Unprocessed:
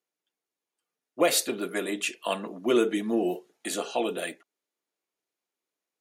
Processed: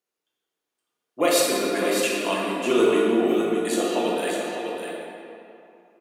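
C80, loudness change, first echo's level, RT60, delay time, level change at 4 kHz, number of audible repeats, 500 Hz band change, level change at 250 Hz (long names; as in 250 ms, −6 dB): −1.5 dB, +5.5 dB, −7.0 dB, 2.8 s, 601 ms, +4.5 dB, 1, +7.0 dB, +6.0 dB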